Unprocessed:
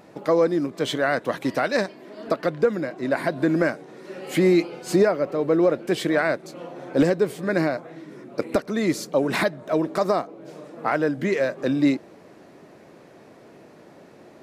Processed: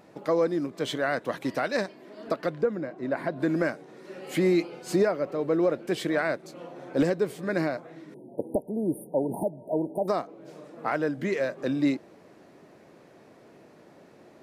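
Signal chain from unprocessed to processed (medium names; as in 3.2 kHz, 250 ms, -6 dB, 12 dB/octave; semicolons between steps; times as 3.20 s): 2.61–3.39 s: treble shelf 2 kHz -> 3.3 kHz -11.5 dB; 8.14–10.08 s: brick-wall FIR band-stop 970–8700 Hz; trim -5 dB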